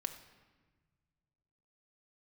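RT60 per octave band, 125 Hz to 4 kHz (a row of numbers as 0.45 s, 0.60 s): 2.7 s, 2.1 s, 1.4 s, 1.3 s, 1.3 s, 1.0 s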